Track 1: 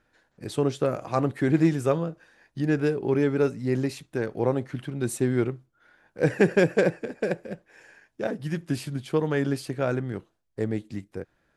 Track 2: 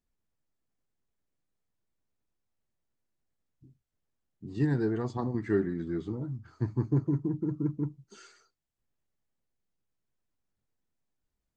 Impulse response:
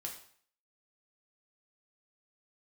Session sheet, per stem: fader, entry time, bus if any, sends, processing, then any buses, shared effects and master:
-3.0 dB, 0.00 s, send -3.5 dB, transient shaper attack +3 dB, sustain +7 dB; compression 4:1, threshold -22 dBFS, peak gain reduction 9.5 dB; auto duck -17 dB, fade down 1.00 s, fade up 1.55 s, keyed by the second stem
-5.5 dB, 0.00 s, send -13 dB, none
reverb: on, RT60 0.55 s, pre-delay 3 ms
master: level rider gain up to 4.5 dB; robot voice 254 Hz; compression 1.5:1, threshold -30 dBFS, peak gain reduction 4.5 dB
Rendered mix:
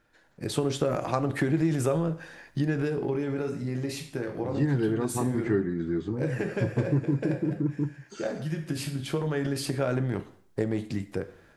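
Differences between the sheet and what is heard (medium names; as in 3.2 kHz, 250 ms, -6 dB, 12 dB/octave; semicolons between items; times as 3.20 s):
stem 2 -5.5 dB -> +1.0 dB; master: missing robot voice 254 Hz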